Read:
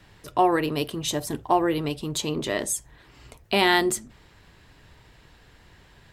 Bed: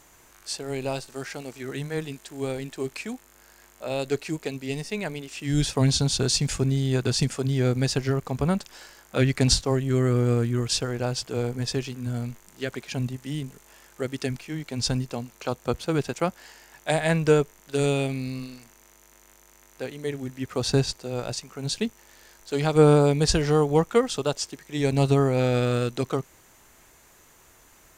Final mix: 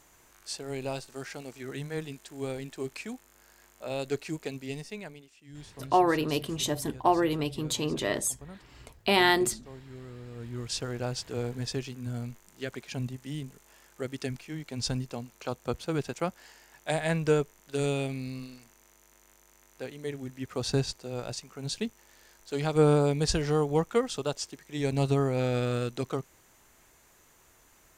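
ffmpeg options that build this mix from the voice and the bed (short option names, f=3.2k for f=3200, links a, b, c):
-filter_complex "[0:a]adelay=5550,volume=-2.5dB[a];[1:a]volume=12.5dB,afade=t=out:st=4.57:d=0.79:silence=0.125893,afade=t=in:st=10.33:d=0.58:silence=0.133352[b];[a][b]amix=inputs=2:normalize=0"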